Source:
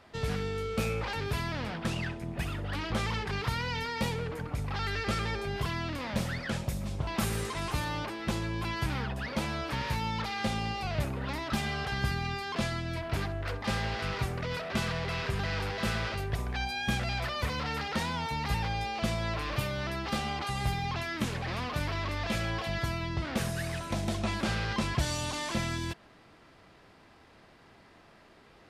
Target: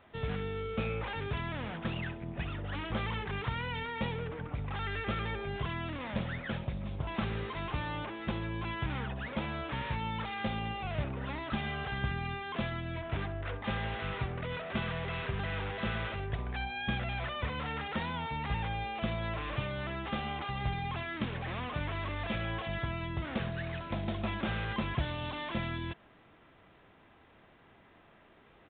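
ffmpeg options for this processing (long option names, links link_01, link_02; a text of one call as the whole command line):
ffmpeg -i in.wav -af "aresample=8000,aresample=44100,volume=-3dB" out.wav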